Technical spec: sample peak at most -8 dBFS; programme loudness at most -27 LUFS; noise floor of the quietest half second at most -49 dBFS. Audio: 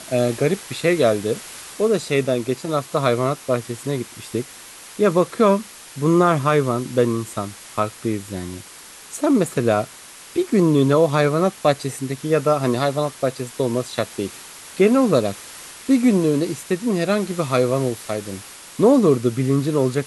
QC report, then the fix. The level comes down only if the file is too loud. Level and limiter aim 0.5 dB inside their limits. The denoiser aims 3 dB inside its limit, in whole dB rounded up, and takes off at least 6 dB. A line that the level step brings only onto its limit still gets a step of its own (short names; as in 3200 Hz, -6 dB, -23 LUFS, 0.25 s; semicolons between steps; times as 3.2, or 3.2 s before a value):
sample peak -4.0 dBFS: fail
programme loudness -20.0 LUFS: fail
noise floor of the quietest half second -41 dBFS: fail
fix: denoiser 6 dB, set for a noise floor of -41 dBFS; gain -7.5 dB